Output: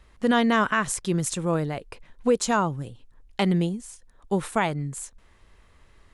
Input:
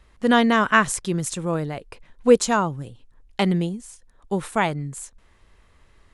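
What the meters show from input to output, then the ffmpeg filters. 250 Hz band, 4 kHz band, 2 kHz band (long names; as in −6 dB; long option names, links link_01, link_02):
−2.5 dB, −3.5 dB, −4.5 dB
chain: -af "alimiter=limit=-11.5dB:level=0:latency=1:release=203"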